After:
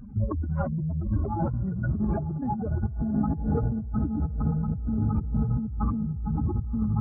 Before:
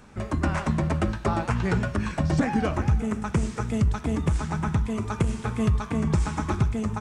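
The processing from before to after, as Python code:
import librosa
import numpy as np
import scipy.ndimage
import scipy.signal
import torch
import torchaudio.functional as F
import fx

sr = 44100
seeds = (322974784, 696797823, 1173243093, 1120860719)

y = fx.spec_expand(x, sr, power=3.4)
y = fx.echo_diffused(y, sr, ms=954, feedback_pct=50, wet_db=-9.5)
y = fx.over_compress(y, sr, threshold_db=-31.0, ratio=-1.0)
y = F.gain(torch.from_numpy(y), 3.5).numpy()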